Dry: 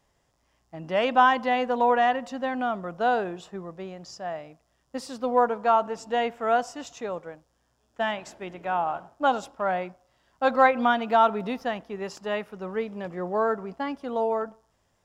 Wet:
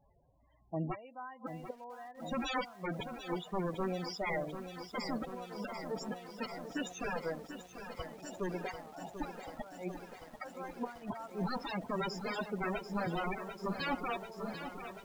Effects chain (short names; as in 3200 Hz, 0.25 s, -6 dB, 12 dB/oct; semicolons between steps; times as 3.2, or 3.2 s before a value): flipped gate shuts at -18 dBFS, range -31 dB; wrapped overs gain 30 dB; loudest bins only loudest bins 16; lo-fi delay 0.74 s, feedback 80%, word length 10-bit, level -9.5 dB; gain +3.5 dB